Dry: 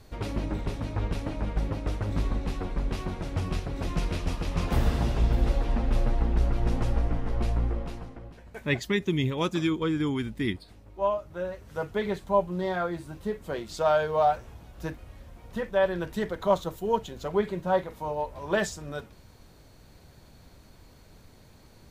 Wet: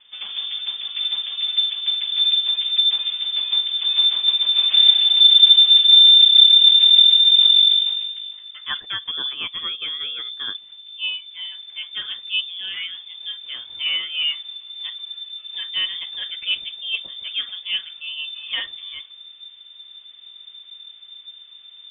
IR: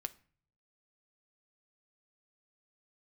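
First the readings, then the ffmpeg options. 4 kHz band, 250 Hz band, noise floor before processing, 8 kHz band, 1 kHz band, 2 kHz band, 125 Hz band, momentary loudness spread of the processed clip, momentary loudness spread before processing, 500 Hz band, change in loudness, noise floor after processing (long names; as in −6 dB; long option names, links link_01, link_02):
+31.5 dB, below −25 dB, −54 dBFS, below −30 dB, below −10 dB, +4.5 dB, below −30 dB, 22 LU, 11 LU, below −25 dB, +15.5 dB, −45 dBFS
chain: -af "asubboost=boost=5.5:cutoff=76,lowpass=frequency=3100:width_type=q:width=0.5098,lowpass=frequency=3100:width_type=q:width=0.6013,lowpass=frequency=3100:width_type=q:width=0.9,lowpass=frequency=3100:width_type=q:width=2.563,afreqshift=-3600"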